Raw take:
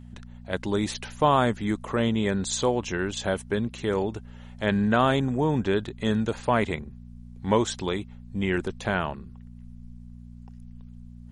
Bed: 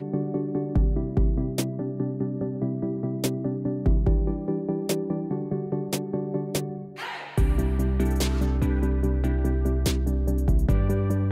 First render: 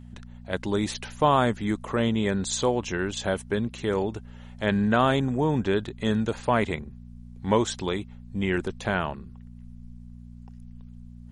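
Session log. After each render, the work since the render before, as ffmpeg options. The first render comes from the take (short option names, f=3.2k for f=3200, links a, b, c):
-af anull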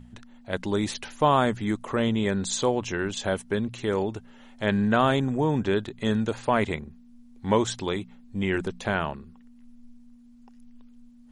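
-af "bandreject=f=60:t=h:w=4,bandreject=f=120:t=h:w=4,bandreject=f=180:t=h:w=4"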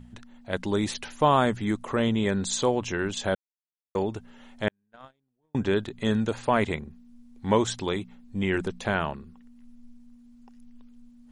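-filter_complex "[0:a]asettb=1/sr,asplit=3[a][b][c];[a]atrim=end=4.684[d];[b]atrim=start=4.68:end=5.55,asetpts=PTS-STARTPTS,afade=t=in:d=0.004:c=qsin,afade=t=out:st=0.866:d=0.004:c=qsin,agate=range=-52dB:threshold=-17dB:ratio=16:release=100:detection=peak[e];[c]atrim=start=5.546[f];[d][e]acrossfade=d=0.004:c1=hsin:c2=qsin[g];[g][f]acrossfade=d=0.004:c1=qsin:c2=hsin,asplit=3[h][i][j];[h]atrim=end=3.35,asetpts=PTS-STARTPTS,afade=t=out:st=3.346:d=0.004:c=hsin[k];[i]atrim=start=3.35:end=3.95,asetpts=PTS-STARTPTS,volume=0[l];[j]atrim=start=3.95,asetpts=PTS-STARTPTS,afade=t=in:d=0.004:c=hsin[m];[k][l][m]concat=n=3:v=0:a=1"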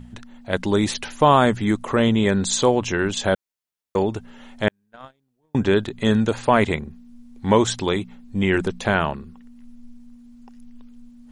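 -af "volume=6.5dB,alimiter=limit=-3dB:level=0:latency=1"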